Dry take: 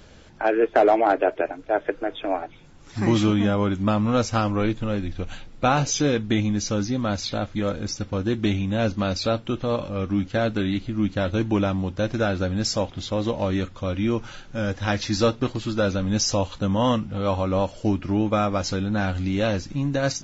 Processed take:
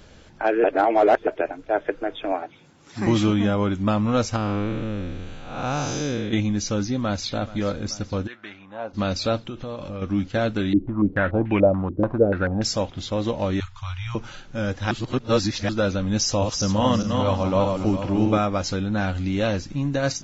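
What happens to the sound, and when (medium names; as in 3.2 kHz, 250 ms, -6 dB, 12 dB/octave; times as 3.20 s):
0.64–1.27 s: reverse
2.32–3.07 s: high-pass 140 Hz
4.36–6.33 s: spectral blur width 267 ms
6.92–7.34 s: echo throw 430 ms, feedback 70%, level -17 dB
8.26–8.93 s: band-pass filter 2.1 kHz -> 740 Hz, Q 2.3
9.45–10.02 s: compression 10:1, threshold -28 dBFS
10.73–12.62 s: step-sequenced low-pass 6.9 Hz 340–2300 Hz
13.60–14.15 s: elliptic band-stop 120–880 Hz
14.91–15.69 s: reverse
16.21–18.38 s: backward echo that repeats 205 ms, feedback 49%, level -4 dB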